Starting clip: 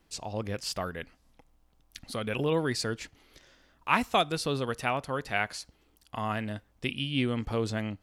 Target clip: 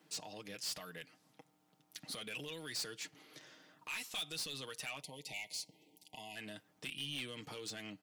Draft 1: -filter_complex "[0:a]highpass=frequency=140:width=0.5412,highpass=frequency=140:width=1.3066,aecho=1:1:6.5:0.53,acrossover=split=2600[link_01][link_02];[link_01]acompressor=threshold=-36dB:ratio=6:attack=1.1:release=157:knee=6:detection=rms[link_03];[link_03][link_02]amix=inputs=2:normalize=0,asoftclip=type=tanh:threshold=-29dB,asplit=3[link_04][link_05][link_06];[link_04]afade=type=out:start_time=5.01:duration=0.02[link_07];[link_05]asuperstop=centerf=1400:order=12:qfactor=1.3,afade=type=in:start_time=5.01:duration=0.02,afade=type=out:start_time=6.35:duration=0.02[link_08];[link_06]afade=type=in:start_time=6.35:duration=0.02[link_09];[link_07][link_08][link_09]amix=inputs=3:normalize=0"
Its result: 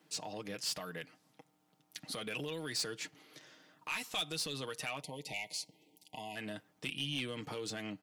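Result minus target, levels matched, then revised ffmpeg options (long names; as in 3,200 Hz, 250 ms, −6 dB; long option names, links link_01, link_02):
downward compressor: peak gain reduction −6.5 dB; soft clipping: distortion −6 dB
-filter_complex "[0:a]highpass=frequency=140:width=0.5412,highpass=frequency=140:width=1.3066,aecho=1:1:6.5:0.53,acrossover=split=2600[link_01][link_02];[link_01]acompressor=threshold=-44dB:ratio=6:attack=1.1:release=157:knee=6:detection=rms[link_03];[link_03][link_02]amix=inputs=2:normalize=0,asoftclip=type=tanh:threshold=-36dB,asplit=3[link_04][link_05][link_06];[link_04]afade=type=out:start_time=5.01:duration=0.02[link_07];[link_05]asuperstop=centerf=1400:order=12:qfactor=1.3,afade=type=in:start_time=5.01:duration=0.02,afade=type=out:start_time=6.35:duration=0.02[link_08];[link_06]afade=type=in:start_time=6.35:duration=0.02[link_09];[link_07][link_08][link_09]amix=inputs=3:normalize=0"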